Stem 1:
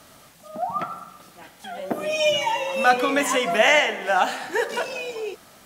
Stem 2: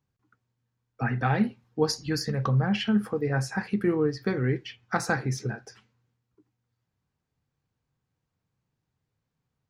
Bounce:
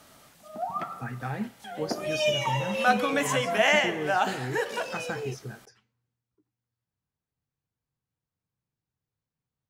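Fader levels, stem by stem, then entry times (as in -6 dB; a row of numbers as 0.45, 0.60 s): -5.0, -8.5 dB; 0.00, 0.00 s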